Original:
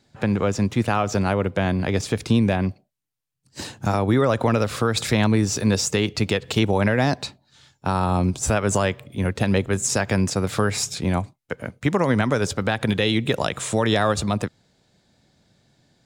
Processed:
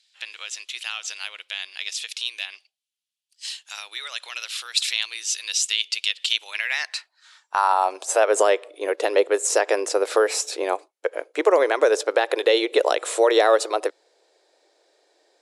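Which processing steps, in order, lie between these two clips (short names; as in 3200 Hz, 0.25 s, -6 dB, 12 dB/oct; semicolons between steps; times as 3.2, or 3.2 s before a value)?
speed mistake 24 fps film run at 25 fps; high-pass sweep 3100 Hz -> 460 Hz, 6.4–8.37; brick-wall FIR band-pass 290–12000 Hz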